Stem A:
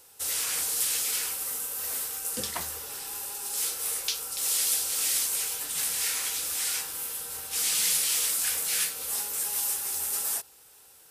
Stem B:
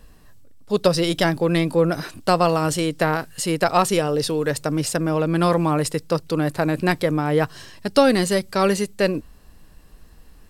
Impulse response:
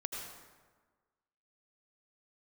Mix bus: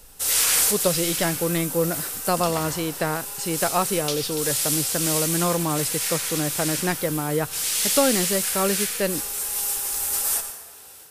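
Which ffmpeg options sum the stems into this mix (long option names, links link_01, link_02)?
-filter_complex "[0:a]dynaudnorm=framelen=190:gausssize=3:maxgain=6dB,volume=1.5dB,asplit=2[link_01][link_02];[link_02]volume=-6.5dB[link_03];[1:a]lowpass=9900,volume=-5dB,asplit=2[link_04][link_05];[link_05]apad=whole_len=489570[link_06];[link_01][link_06]sidechaincompress=threshold=-41dB:ratio=8:attack=16:release=1200[link_07];[2:a]atrim=start_sample=2205[link_08];[link_03][link_08]afir=irnorm=-1:irlink=0[link_09];[link_07][link_04][link_09]amix=inputs=3:normalize=0"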